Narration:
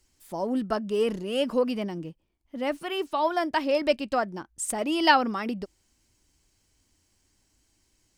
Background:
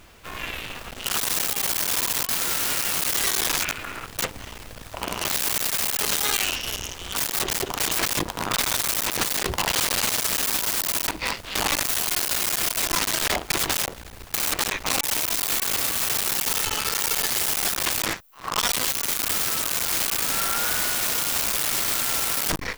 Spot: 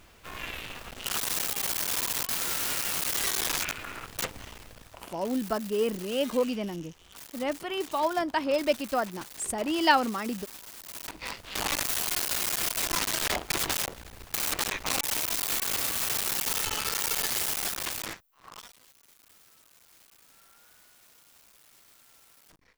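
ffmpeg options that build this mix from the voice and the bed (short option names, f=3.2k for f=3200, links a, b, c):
-filter_complex "[0:a]adelay=4800,volume=-2dB[a];[1:a]volume=10.5dB,afade=t=out:st=4.41:d=0.78:silence=0.16788,afade=t=in:st=10.81:d=1.02:silence=0.158489,afade=t=out:st=17.36:d=1.37:silence=0.0354813[b];[a][b]amix=inputs=2:normalize=0"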